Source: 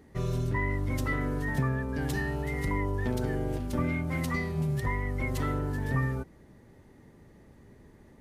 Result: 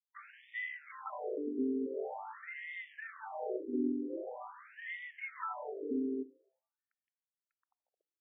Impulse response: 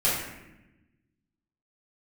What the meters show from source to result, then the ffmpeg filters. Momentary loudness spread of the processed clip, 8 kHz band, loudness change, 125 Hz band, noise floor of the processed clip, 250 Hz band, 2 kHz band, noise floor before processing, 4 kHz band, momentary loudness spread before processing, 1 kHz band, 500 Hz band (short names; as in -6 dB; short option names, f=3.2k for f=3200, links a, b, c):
11 LU, under -30 dB, -9.0 dB, under -40 dB, under -85 dBFS, -5.5 dB, -8.5 dB, -56 dBFS, -12.5 dB, 2 LU, -7.0 dB, -4.5 dB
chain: -filter_complex "[0:a]equalizer=f=3.3k:t=o:w=2.5:g=-9.5,bandreject=f=60:t=h:w=6,bandreject=f=120:t=h:w=6,bandreject=f=180:t=h:w=6,bandreject=f=240:t=h:w=6,bandreject=f=300:t=h:w=6,aeval=exprs='sgn(val(0))*max(abs(val(0))-0.00501,0)':c=same,asplit=2[a][b];[1:a]atrim=start_sample=2205[c];[b][c]afir=irnorm=-1:irlink=0,volume=-32.5dB[d];[a][d]amix=inputs=2:normalize=0,afftfilt=real='re*between(b*sr/1024,310*pow(2600/310,0.5+0.5*sin(2*PI*0.45*pts/sr))/1.41,310*pow(2600/310,0.5+0.5*sin(2*PI*0.45*pts/sr))*1.41)':imag='im*between(b*sr/1024,310*pow(2600/310,0.5+0.5*sin(2*PI*0.45*pts/sr))/1.41,310*pow(2600/310,0.5+0.5*sin(2*PI*0.45*pts/sr))*1.41)':win_size=1024:overlap=0.75,volume=4dB"